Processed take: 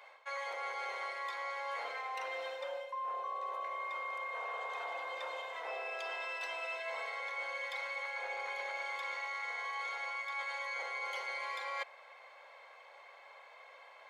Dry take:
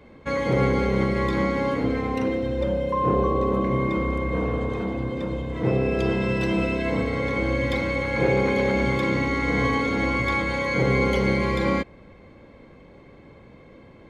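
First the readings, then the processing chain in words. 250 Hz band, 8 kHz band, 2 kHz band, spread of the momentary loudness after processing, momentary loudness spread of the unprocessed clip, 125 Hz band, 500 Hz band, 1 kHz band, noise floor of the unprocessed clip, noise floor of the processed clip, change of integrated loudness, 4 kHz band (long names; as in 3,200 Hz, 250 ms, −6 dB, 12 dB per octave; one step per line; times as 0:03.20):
below −40 dB, can't be measured, −10.5 dB, 17 LU, 5 LU, below −40 dB, −21.0 dB, −10.5 dB, −49 dBFS, −57 dBFS, −15.5 dB, −9.5 dB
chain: Butterworth high-pass 660 Hz 36 dB per octave
reversed playback
downward compressor 12 to 1, threshold −38 dBFS, peak gain reduction 16.5 dB
reversed playback
level +1 dB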